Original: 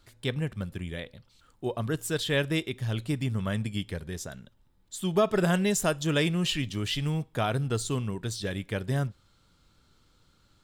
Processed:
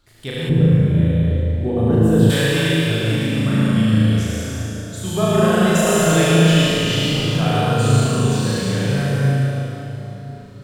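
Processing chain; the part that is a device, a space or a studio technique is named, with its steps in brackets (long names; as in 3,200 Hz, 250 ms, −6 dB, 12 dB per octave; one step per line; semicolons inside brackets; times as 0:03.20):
tunnel (flutter between parallel walls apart 6.3 metres, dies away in 1.2 s; convolution reverb RT60 3.7 s, pre-delay 68 ms, DRR −6 dB)
0:00.49–0:02.30: tilt shelving filter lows +9 dB, about 770 Hz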